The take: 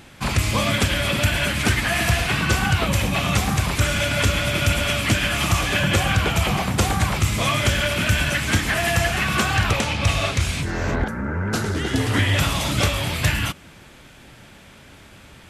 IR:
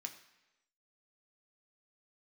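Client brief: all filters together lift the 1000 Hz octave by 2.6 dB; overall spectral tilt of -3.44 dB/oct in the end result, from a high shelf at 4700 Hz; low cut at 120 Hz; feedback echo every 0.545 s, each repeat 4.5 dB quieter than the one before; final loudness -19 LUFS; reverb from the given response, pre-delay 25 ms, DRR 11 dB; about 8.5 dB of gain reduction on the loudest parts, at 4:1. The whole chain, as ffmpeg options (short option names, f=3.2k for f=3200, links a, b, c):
-filter_complex "[0:a]highpass=120,equalizer=f=1k:t=o:g=3,highshelf=f=4.7k:g=8,acompressor=threshold=-25dB:ratio=4,aecho=1:1:545|1090|1635|2180|2725|3270|3815|4360|4905:0.596|0.357|0.214|0.129|0.0772|0.0463|0.0278|0.0167|0.01,asplit=2[a][b];[1:a]atrim=start_sample=2205,adelay=25[c];[b][c]afir=irnorm=-1:irlink=0,volume=-8dB[d];[a][d]amix=inputs=2:normalize=0,volume=5dB"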